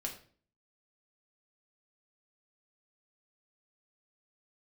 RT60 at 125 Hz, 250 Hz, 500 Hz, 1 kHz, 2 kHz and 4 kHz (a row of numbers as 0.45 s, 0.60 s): 0.60 s, 0.60 s, 0.50 s, 0.40 s, 0.40 s, 0.35 s